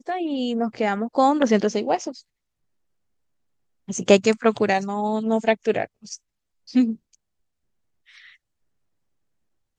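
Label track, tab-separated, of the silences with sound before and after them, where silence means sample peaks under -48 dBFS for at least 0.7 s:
2.220000	3.880000	silence
7.150000	8.080000	silence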